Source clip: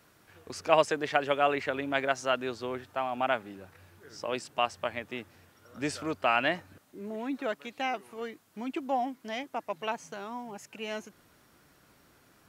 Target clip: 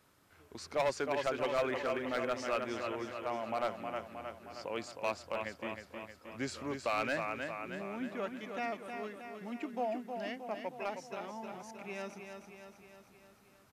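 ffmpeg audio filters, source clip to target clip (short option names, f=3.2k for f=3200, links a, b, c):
-af "asetrate=40131,aresample=44100,aecho=1:1:313|626|939|1252|1565|1878|2191|2504:0.473|0.279|0.165|0.0972|0.0573|0.0338|0.02|0.0118,volume=20dB,asoftclip=hard,volume=-20dB,volume=-6dB"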